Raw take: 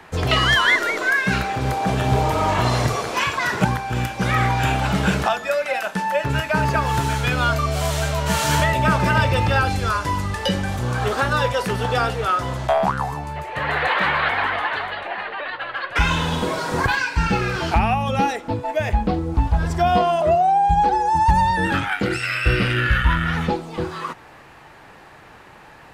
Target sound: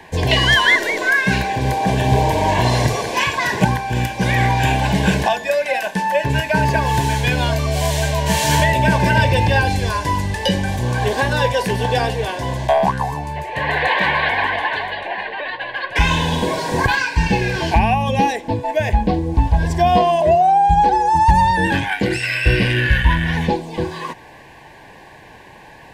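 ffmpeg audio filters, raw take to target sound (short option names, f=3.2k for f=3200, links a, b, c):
-af "asuperstop=centerf=1300:order=8:qfactor=3.5,volume=3.5dB"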